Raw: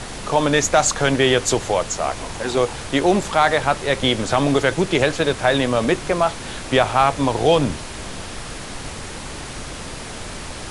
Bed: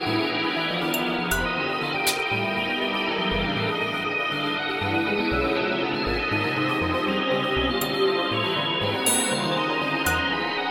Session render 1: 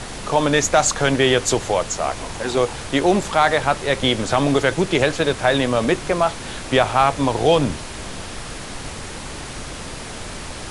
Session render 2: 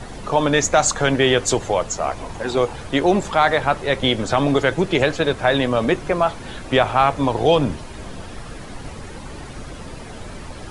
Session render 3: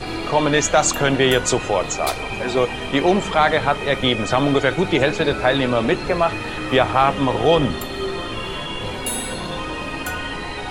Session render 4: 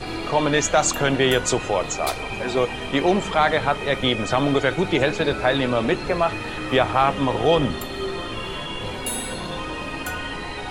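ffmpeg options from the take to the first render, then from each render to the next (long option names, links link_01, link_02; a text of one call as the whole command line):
ffmpeg -i in.wav -af anull out.wav
ffmpeg -i in.wav -af "afftdn=noise_reduction=10:noise_floor=-33" out.wav
ffmpeg -i in.wav -i bed.wav -filter_complex "[1:a]volume=-4dB[link_01];[0:a][link_01]amix=inputs=2:normalize=0" out.wav
ffmpeg -i in.wav -af "volume=-2.5dB" out.wav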